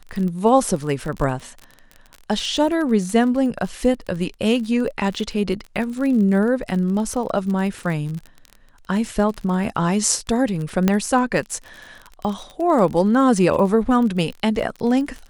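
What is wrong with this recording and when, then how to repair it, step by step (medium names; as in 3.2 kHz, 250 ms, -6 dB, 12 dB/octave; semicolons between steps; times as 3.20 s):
crackle 34 per s -27 dBFS
10.88 s: pop -4 dBFS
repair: de-click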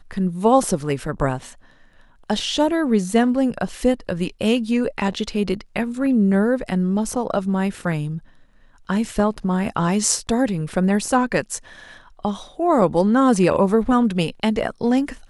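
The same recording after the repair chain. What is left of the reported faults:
10.88 s: pop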